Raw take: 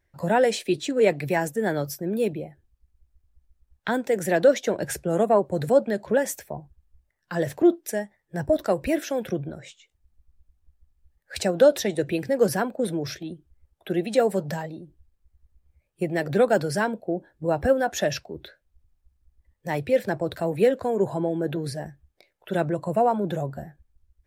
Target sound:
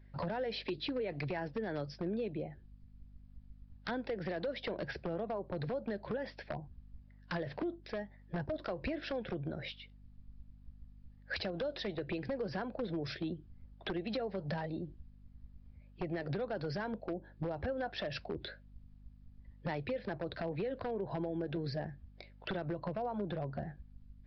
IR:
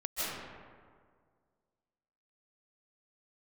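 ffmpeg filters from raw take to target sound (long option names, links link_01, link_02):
-af "alimiter=limit=-18.5dB:level=0:latency=1:release=120,acompressor=threshold=-37dB:ratio=12,aresample=11025,aeval=exprs='0.0224*(abs(mod(val(0)/0.0224+3,4)-2)-1)':channel_layout=same,aresample=44100,aeval=exprs='val(0)+0.001*(sin(2*PI*50*n/s)+sin(2*PI*2*50*n/s)/2+sin(2*PI*3*50*n/s)/3+sin(2*PI*4*50*n/s)/4+sin(2*PI*5*50*n/s)/5)':channel_layout=same,volume=3.5dB"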